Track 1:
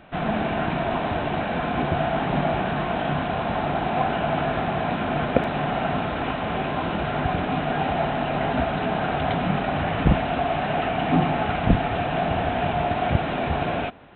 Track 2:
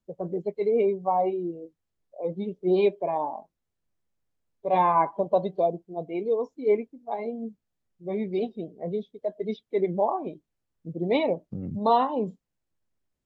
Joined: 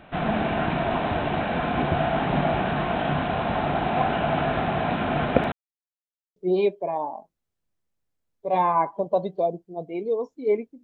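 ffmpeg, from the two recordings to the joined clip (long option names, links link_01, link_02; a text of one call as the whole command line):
ffmpeg -i cue0.wav -i cue1.wav -filter_complex "[0:a]apad=whole_dur=10.83,atrim=end=10.83,asplit=2[link_01][link_02];[link_01]atrim=end=5.52,asetpts=PTS-STARTPTS,afade=type=out:start_time=5.516:duration=0.004:curve=hsin[link_03];[link_02]atrim=start=5.52:end=6.36,asetpts=PTS-STARTPTS,volume=0[link_04];[1:a]atrim=start=2.56:end=7.03,asetpts=PTS-STARTPTS,afade=type=in:duration=0.004:curve=hsin[link_05];[link_03][link_04][link_05]concat=n=3:v=0:a=1" out.wav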